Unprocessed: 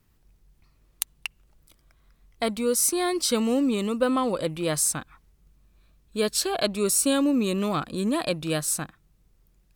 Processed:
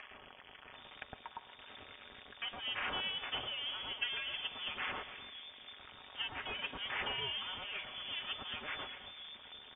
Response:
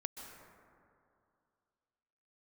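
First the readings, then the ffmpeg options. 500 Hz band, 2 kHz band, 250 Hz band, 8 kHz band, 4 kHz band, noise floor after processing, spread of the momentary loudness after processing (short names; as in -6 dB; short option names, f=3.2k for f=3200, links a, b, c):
-25.5 dB, -4.0 dB, -32.0 dB, under -40 dB, -4.0 dB, -57 dBFS, 16 LU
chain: -filter_complex "[0:a]aeval=exprs='val(0)+0.5*0.0631*sgn(val(0))':c=same,equalizer=f=1.7k:w=0.4:g=-11.5,aeval=exprs='0.473*(cos(1*acos(clip(val(0)/0.473,-1,1)))-cos(1*PI/2))+0.188*(cos(6*acos(clip(val(0)/0.473,-1,1)))-cos(6*PI/2))':c=same,aderivative,aecho=1:1:5.8:0.43,acrossover=split=340|2600[a][b][c];[c]adelay=110[d];[a]adelay=730[e];[e][b][d]amix=inputs=3:normalize=0,asplit=2[f][g];[1:a]atrim=start_sample=2205[h];[g][h]afir=irnorm=-1:irlink=0,volume=-2.5dB[i];[f][i]amix=inputs=2:normalize=0,lowpass=f=3.1k:t=q:w=0.5098,lowpass=f=3.1k:t=q:w=0.6013,lowpass=f=3.1k:t=q:w=0.9,lowpass=f=3.1k:t=q:w=2.563,afreqshift=-3700,acompressor=mode=upward:threshold=-48dB:ratio=2.5,volume=1.5dB"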